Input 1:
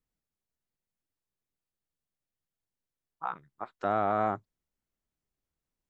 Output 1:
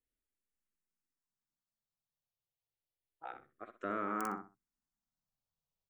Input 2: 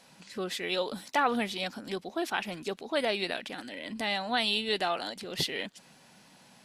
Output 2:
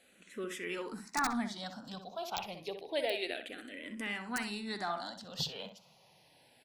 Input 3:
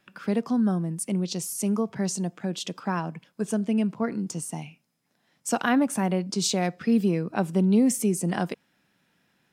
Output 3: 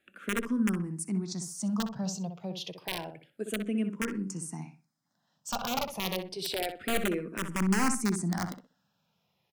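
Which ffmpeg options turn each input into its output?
-filter_complex "[0:a]aeval=exprs='(mod(5.96*val(0)+1,2)-1)/5.96':c=same,asplit=2[s0][s1];[s1]adelay=63,lowpass=f=2100:p=1,volume=0.447,asplit=2[s2][s3];[s3]adelay=63,lowpass=f=2100:p=1,volume=0.25,asplit=2[s4][s5];[s5]adelay=63,lowpass=f=2100:p=1,volume=0.25[s6];[s2][s4][s6]amix=inputs=3:normalize=0[s7];[s0][s7]amix=inputs=2:normalize=0,asplit=2[s8][s9];[s9]afreqshift=-0.29[s10];[s8][s10]amix=inputs=2:normalize=1,volume=0.631"

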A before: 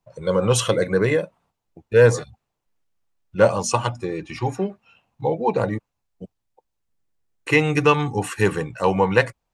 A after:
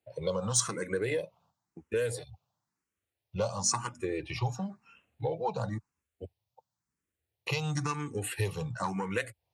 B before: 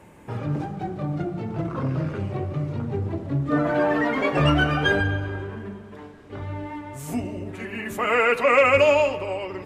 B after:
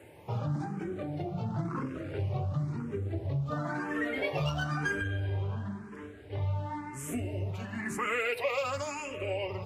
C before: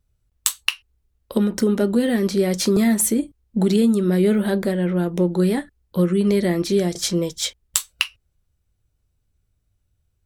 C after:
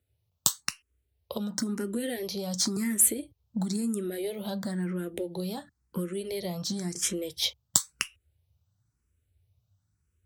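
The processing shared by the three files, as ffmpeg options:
-filter_complex "[0:a]asubboost=boost=3:cutoff=120,aeval=exprs='0.944*(cos(1*acos(clip(val(0)/0.944,-1,1)))-cos(1*PI/2))+0.266*(cos(2*acos(clip(val(0)/0.944,-1,1)))-cos(2*PI/2))':c=same,highpass=f=81:w=0.5412,highpass=f=81:w=1.3066,acrossover=split=4200[s0][s1];[s0]acompressor=threshold=0.0447:ratio=6[s2];[s2][s1]amix=inputs=2:normalize=0,asplit=2[s3][s4];[s4]afreqshift=0.97[s5];[s3][s5]amix=inputs=2:normalize=1"

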